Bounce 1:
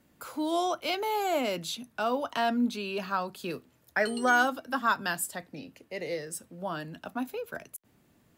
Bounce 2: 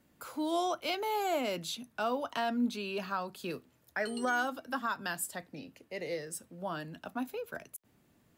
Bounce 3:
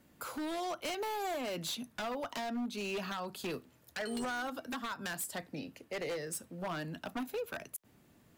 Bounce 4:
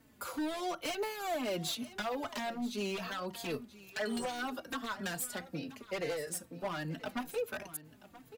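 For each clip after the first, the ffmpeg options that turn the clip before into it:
ffmpeg -i in.wav -af "alimiter=limit=-19.5dB:level=0:latency=1:release=213,volume=-3dB" out.wav
ffmpeg -i in.wav -af "acompressor=threshold=-35dB:ratio=20,aeval=exprs='0.0178*(abs(mod(val(0)/0.0178+3,4)-2)-1)':channel_layout=same,volume=3.5dB" out.wav
ffmpeg -i in.wav -filter_complex "[0:a]aecho=1:1:980:0.15,asplit=2[link_01][link_02];[link_02]adelay=4,afreqshift=-2.3[link_03];[link_01][link_03]amix=inputs=2:normalize=1,volume=4dB" out.wav

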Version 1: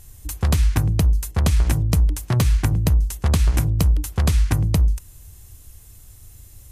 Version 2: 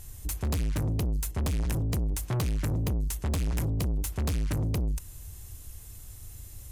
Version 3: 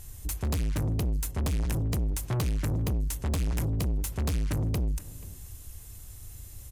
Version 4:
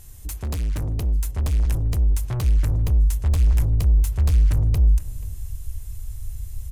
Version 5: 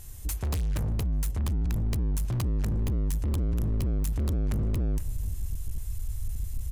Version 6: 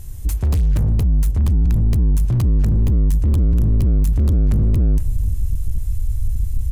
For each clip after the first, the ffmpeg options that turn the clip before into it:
ffmpeg -i in.wav -af "asoftclip=type=tanh:threshold=-26dB" out.wav
ffmpeg -i in.wav -filter_complex "[0:a]asplit=2[link_01][link_02];[link_02]adelay=484,volume=-19dB,highshelf=frequency=4000:gain=-10.9[link_03];[link_01][link_03]amix=inputs=2:normalize=0" out.wav
ffmpeg -i in.wav -af "asubboost=boost=7.5:cutoff=85" out.wav
ffmpeg -i in.wav -af "volume=25dB,asoftclip=hard,volume=-25dB" out.wav
ffmpeg -i in.wav -af "lowshelf=frequency=390:gain=10.5,volume=2dB" out.wav

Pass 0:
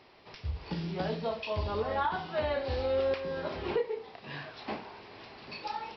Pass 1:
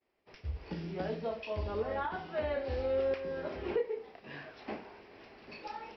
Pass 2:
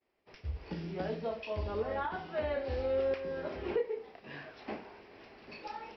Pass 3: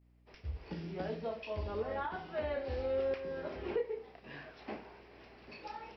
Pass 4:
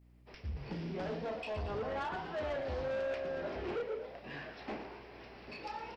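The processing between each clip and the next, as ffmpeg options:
ffmpeg -i in.wav -af "agate=range=-33dB:threshold=-47dB:ratio=3:detection=peak,equalizer=frequency=125:width_type=o:width=1:gain=-9,equalizer=frequency=1000:width_type=o:width=1:gain=-7,equalizer=frequency=4000:width_type=o:width=1:gain=-11" out.wav
ffmpeg -i in.wav -af anull out.wav
ffmpeg -i in.wav -af "aeval=exprs='val(0)+0.000794*(sin(2*PI*60*n/s)+sin(2*PI*2*60*n/s)/2+sin(2*PI*3*60*n/s)/3+sin(2*PI*4*60*n/s)/4+sin(2*PI*5*60*n/s)/5)':channel_layout=same,volume=-2.5dB" out.wav
ffmpeg -i in.wav -filter_complex "[0:a]asoftclip=type=tanh:threshold=-38dB,asplit=6[link_01][link_02][link_03][link_04][link_05][link_06];[link_02]adelay=116,afreqshift=68,volume=-11dB[link_07];[link_03]adelay=232,afreqshift=136,volume=-16.8dB[link_08];[link_04]adelay=348,afreqshift=204,volume=-22.7dB[link_09];[link_05]adelay=464,afreqshift=272,volume=-28.5dB[link_10];[link_06]adelay=580,afreqshift=340,volume=-34.4dB[link_11];[link_01][link_07][link_08][link_09][link_10][link_11]amix=inputs=6:normalize=0,volume=4dB" out.wav

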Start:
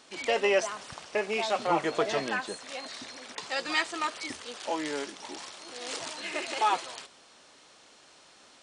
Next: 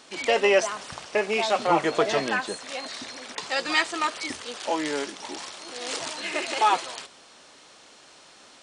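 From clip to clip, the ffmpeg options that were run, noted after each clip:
ffmpeg -i in.wav -af "bandreject=frequency=60:width_type=h:width=6,bandreject=frequency=120:width_type=h:width=6,volume=5dB" out.wav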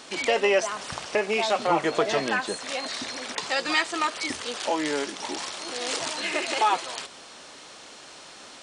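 ffmpeg -i in.wav -af "acompressor=threshold=-38dB:ratio=1.5,volume=6dB" out.wav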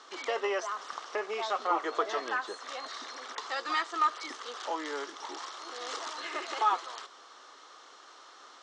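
ffmpeg -i in.wav -af "highpass=frequency=340:width=0.5412,highpass=frequency=340:width=1.3066,equalizer=frequency=590:width_type=q:width=4:gain=-5,equalizer=frequency=1200:width_type=q:width=4:gain=10,equalizer=frequency=2500:width_type=q:width=4:gain=-9,equalizer=frequency=4600:width_type=q:width=4:gain=-4,lowpass=frequency=6300:width=0.5412,lowpass=frequency=6300:width=1.3066,volume=-7.5dB" out.wav

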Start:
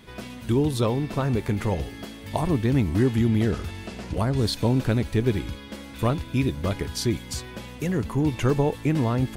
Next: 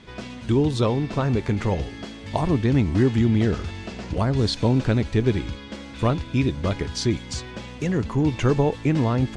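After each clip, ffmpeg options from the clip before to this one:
ffmpeg -i in.wav -af "lowpass=frequency=7400:width=0.5412,lowpass=frequency=7400:width=1.3066,volume=2dB" out.wav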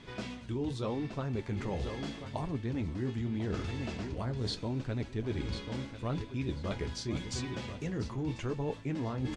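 ffmpeg -i in.wav -af "aecho=1:1:1043|2086|3129|4172:0.178|0.0747|0.0314|0.0132,flanger=delay=7:depth=9.5:regen=-46:speed=0.8:shape=sinusoidal,areverse,acompressor=threshold=-32dB:ratio=6,areverse" out.wav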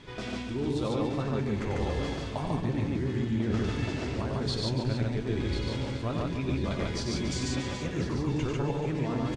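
ffmpeg -i in.wav -filter_complex "[0:a]asplit=2[link_01][link_02];[link_02]aecho=0:1:285:0.316[link_03];[link_01][link_03]amix=inputs=2:normalize=0,flanger=delay=2.2:depth=3.7:regen=-72:speed=0.52:shape=sinusoidal,asplit=2[link_04][link_05];[link_05]aecho=0:1:93.29|145.8:0.562|0.891[link_06];[link_04][link_06]amix=inputs=2:normalize=0,volume=6.5dB" out.wav

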